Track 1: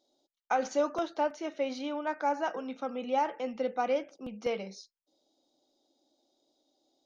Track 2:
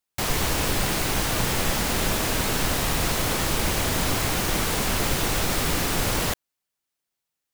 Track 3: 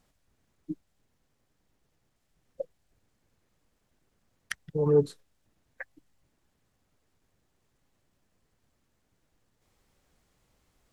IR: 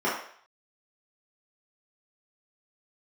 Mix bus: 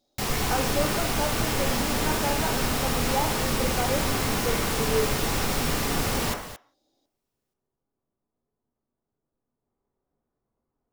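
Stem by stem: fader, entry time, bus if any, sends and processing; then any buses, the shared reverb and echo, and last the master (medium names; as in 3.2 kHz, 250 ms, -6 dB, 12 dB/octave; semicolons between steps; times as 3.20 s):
+0.5 dB, 0.00 s, send -22 dB, no echo send, none
-3.0 dB, 0.00 s, send -15.5 dB, echo send -12.5 dB, none
-15.5 dB, 0.00 s, send -6.5 dB, no echo send, low-pass 1 kHz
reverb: on, RT60 0.55 s, pre-delay 3 ms
echo: delay 224 ms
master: none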